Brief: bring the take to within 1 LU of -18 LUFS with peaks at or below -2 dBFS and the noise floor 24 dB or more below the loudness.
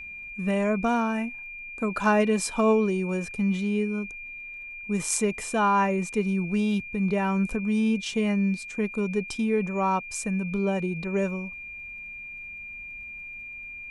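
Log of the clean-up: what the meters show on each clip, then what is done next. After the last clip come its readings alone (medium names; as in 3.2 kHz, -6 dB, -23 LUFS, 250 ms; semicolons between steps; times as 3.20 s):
tick rate 23 per s; steady tone 2.4 kHz; tone level -37 dBFS; loudness -26.0 LUFS; peak level -9.0 dBFS; loudness target -18.0 LUFS
-> de-click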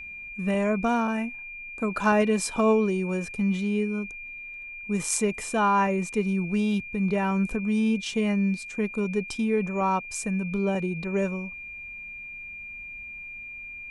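tick rate 0 per s; steady tone 2.4 kHz; tone level -37 dBFS
-> band-stop 2.4 kHz, Q 30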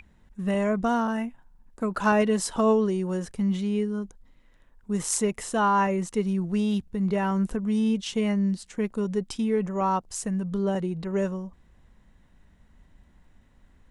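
steady tone not found; loudness -26.5 LUFS; peak level -9.0 dBFS; loudness target -18.0 LUFS
-> trim +8.5 dB; peak limiter -2 dBFS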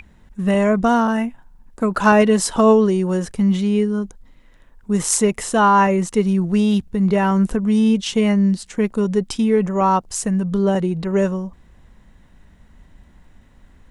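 loudness -18.0 LUFS; peak level -2.0 dBFS; noise floor -51 dBFS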